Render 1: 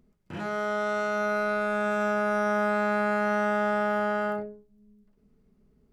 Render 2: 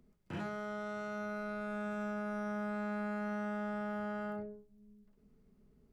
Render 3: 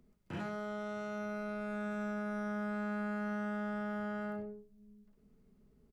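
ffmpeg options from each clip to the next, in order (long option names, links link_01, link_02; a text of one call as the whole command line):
ffmpeg -i in.wav -filter_complex "[0:a]acrossover=split=200[link_01][link_02];[link_02]acompressor=threshold=-38dB:ratio=5[link_03];[link_01][link_03]amix=inputs=2:normalize=0,volume=-2.5dB" out.wav
ffmpeg -i in.wav -af "aecho=1:1:81:0.2" out.wav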